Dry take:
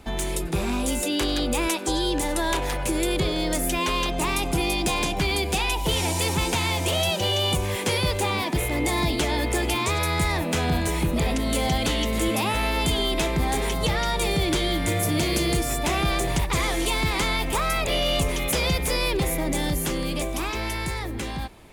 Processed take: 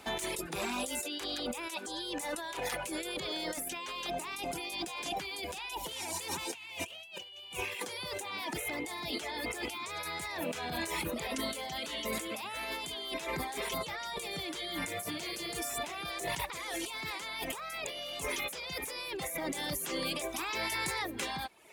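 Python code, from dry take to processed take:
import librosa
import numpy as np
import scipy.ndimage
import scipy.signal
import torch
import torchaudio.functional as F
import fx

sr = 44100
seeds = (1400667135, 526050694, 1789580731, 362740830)

y = fx.peak_eq(x, sr, hz=2700.0, db=15.0, octaves=0.42, at=(6.54, 7.8))
y = fx.dereverb_blind(y, sr, rt60_s=0.75)
y = fx.highpass(y, sr, hz=660.0, slope=6)
y = fx.over_compress(y, sr, threshold_db=-35.0, ratio=-1.0)
y = y * 10.0 ** (-4.0 / 20.0)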